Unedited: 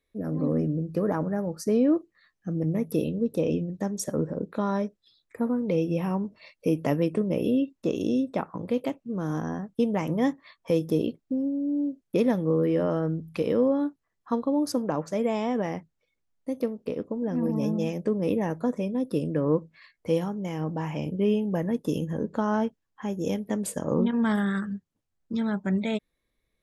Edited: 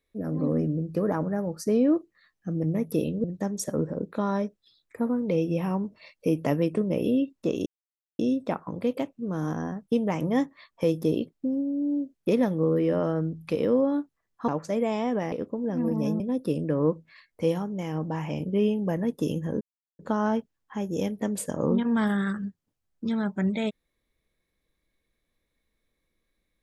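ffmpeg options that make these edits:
ffmpeg -i in.wav -filter_complex "[0:a]asplit=7[link_01][link_02][link_03][link_04][link_05][link_06][link_07];[link_01]atrim=end=3.242[link_08];[link_02]atrim=start=3.638:end=8.06,asetpts=PTS-STARTPTS,afade=type=out:start_time=4.418:duration=0.004:curve=hsin,apad=pad_dur=0.53[link_09];[link_03]atrim=start=8.06:end=14.352,asetpts=PTS-STARTPTS,afade=type=in:duration=0.004:curve=hsin[link_10];[link_04]atrim=start=14.908:end=15.752[link_11];[link_05]atrim=start=16.898:end=17.782[link_12];[link_06]atrim=start=18.858:end=22.27,asetpts=PTS-STARTPTS,afade=type=out:start_time=3.408:duration=0.004:curve=hsin,apad=pad_dur=0.38[link_13];[link_07]atrim=start=22.27,asetpts=PTS-STARTPTS,afade=type=in:duration=0.004:curve=hsin[link_14];[link_09][link_10]concat=n=2:v=0:a=1[link_15];[link_08][link_15]acrossfade=duration=0.004:curve1=hsin:curve2=hsin[link_16];[link_16][link_11]acrossfade=duration=0.004:curve1=hsin:curve2=hsin[link_17];[link_17][link_12]acrossfade=duration=0.004:curve1=hsin:curve2=hsin[link_18];[link_13][link_14]concat=n=2:v=0:a=1[link_19];[link_18][link_19]acrossfade=duration=0.004:curve1=hsin:curve2=hsin" out.wav

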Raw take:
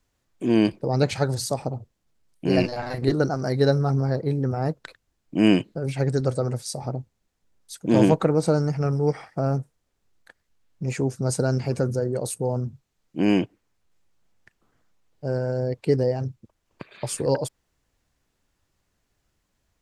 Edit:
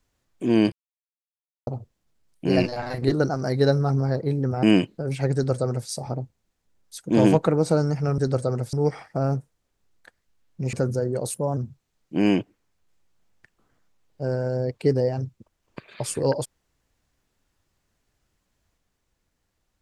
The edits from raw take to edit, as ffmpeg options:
ffmpeg -i in.wav -filter_complex "[0:a]asplit=9[link_01][link_02][link_03][link_04][link_05][link_06][link_07][link_08][link_09];[link_01]atrim=end=0.72,asetpts=PTS-STARTPTS,afade=type=out:start_time=0.716:duration=0.004:curve=hsin[link_10];[link_02]atrim=start=0.72:end=1.67,asetpts=PTS-STARTPTS,volume=0[link_11];[link_03]atrim=start=1.67:end=4.632,asetpts=PTS-STARTPTS,afade=type=in:duration=0.004:curve=hsin[link_12];[link_04]atrim=start=5.398:end=8.952[link_13];[link_05]atrim=start=6.108:end=6.662[link_14];[link_06]atrim=start=8.948:end=10.952[link_15];[link_07]atrim=start=11.728:end=12.344[link_16];[link_08]atrim=start=12.34:end=12.6,asetpts=PTS-STARTPTS,asetrate=49833,aresample=44100[link_17];[link_09]atrim=start=12.596[link_18];[link_10][link_11][link_12]concat=n=3:v=0:a=1[link_19];[link_19][link_13]acrossfade=duration=0.004:curve1=hsin:curve2=hsin[link_20];[link_20][link_14]acrossfade=duration=0.004:curve1=hsin:curve2=hsin[link_21];[link_21][link_15]acrossfade=duration=0.004:curve1=hsin:curve2=hsin[link_22];[link_22][link_16]acrossfade=duration=0.004:curve1=hsin:curve2=hsin[link_23];[link_23][link_17]acrossfade=duration=0.004:curve1=hsin:curve2=hsin[link_24];[link_24][link_18]acrossfade=duration=0.004:curve1=hsin:curve2=hsin" out.wav

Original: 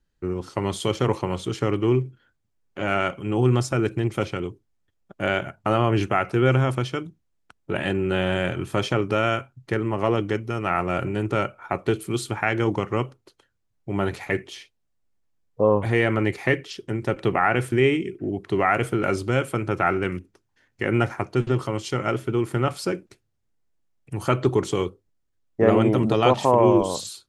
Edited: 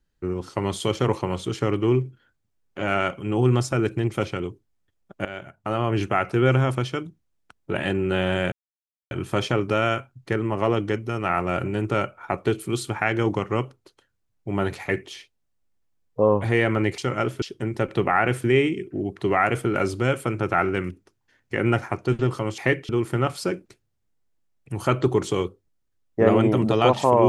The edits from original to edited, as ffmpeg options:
ffmpeg -i in.wav -filter_complex "[0:a]asplit=7[link_01][link_02][link_03][link_04][link_05][link_06][link_07];[link_01]atrim=end=5.25,asetpts=PTS-STARTPTS,afade=type=out:start_time=5.246:duration=0.004:curve=hsin:silence=0.177828[link_08];[link_02]atrim=start=5.25:end=8.52,asetpts=PTS-STARTPTS,afade=type=in:duration=0.96:silence=0.177828,afade=type=out:start_time=3.266:duration=0.004:curve=hsin,apad=pad_dur=0.59[link_09];[link_03]atrim=start=8.52:end=16.392,asetpts=PTS-STARTPTS,afade=type=in:duration=0.004:curve=hsin[link_10];[link_04]atrim=start=21.858:end=22.302[link_11];[link_05]atrim=start=16.698:end=21.862[link_12];[link_06]atrim=start=16.388:end=16.702[link_13];[link_07]atrim=start=22.298[link_14];[link_08][link_09][link_10]concat=n=3:v=0:a=1[link_15];[link_15][link_11]acrossfade=duration=0.004:curve1=hsin:curve2=hsin[link_16];[link_16][link_12]acrossfade=duration=0.004:curve1=hsin:curve2=hsin[link_17];[link_17][link_13]acrossfade=duration=0.004:curve1=hsin:curve2=hsin[link_18];[link_18][link_14]acrossfade=duration=0.004:curve1=hsin:curve2=hsin" out.wav

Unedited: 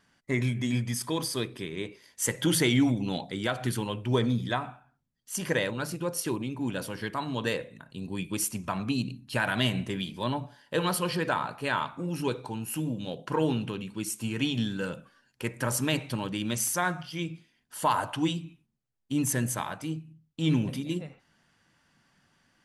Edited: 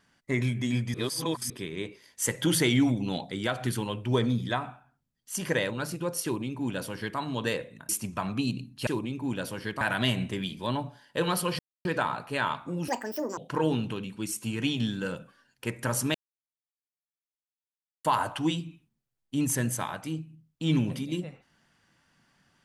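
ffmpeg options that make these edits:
ffmpeg -i in.wav -filter_complex "[0:a]asplit=11[link_01][link_02][link_03][link_04][link_05][link_06][link_07][link_08][link_09][link_10][link_11];[link_01]atrim=end=0.942[link_12];[link_02]atrim=start=0.938:end=1.502,asetpts=PTS-STARTPTS,areverse[link_13];[link_03]atrim=start=1.498:end=7.892[link_14];[link_04]atrim=start=8.398:end=9.382[link_15];[link_05]atrim=start=6.238:end=7.182[link_16];[link_06]atrim=start=9.378:end=11.16,asetpts=PTS-STARTPTS,afade=type=out:start_time=1.778:duration=0.004:curve=hsin,apad=pad_dur=0.26[link_17];[link_07]atrim=start=11.16:end=12.194,asetpts=PTS-STARTPTS,afade=type=in:duration=0.004:curve=hsin[link_18];[link_08]atrim=start=12.19:end=13.15,asetpts=PTS-STARTPTS,asetrate=85554,aresample=44100[link_19];[link_09]atrim=start=13.146:end=15.92,asetpts=PTS-STARTPTS,afade=type=out:start_time=2.77:duration=0.004:curve=hsin[link_20];[link_10]atrim=start=15.92:end=17.82,asetpts=PTS-STARTPTS,volume=0[link_21];[link_11]atrim=start=17.82,asetpts=PTS-STARTPTS,afade=type=in:duration=0.004:curve=hsin[link_22];[link_12][link_13]acrossfade=duration=0.004:curve1=hsin:curve2=hsin[link_23];[link_23][link_14]acrossfade=duration=0.004:curve1=hsin:curve2=hsin[link_24];[link_24][link_15]acrossfade=duration=0.004:curve1=hsin:curve2=hsin[link_25];[link_25][link_16]acrossfade=duration=0.004:curve1=hsin:curve2=hsin[link_26];[link_17][link_18]concat=n=2:v=0:a=1[link_27];[link_26][link_27]acrossfade=duration=0.004:curve1=hsin:curve2=hsin[link_28];[link_28][link_19]acrossfade=duration=0.004:curve1=hsin:curve2=hsin[link_29];[link_20][link_21][link_22]concat=n=3:v=0:a=1[link_30];[link_29][link_30]acrossfade=duration=0.004:curve1=hsin:curve2=hsin" out.wav

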